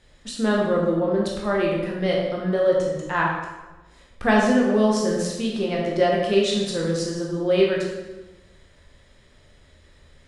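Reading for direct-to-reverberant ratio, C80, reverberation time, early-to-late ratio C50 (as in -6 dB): -3.0 dB, 4.0 dB, 1.2 s, 1.5 dB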